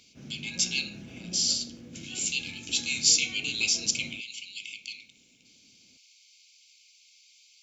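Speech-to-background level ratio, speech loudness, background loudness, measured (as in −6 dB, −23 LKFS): 18.0 dB, −27.5 LKFS, −45.5 LKFS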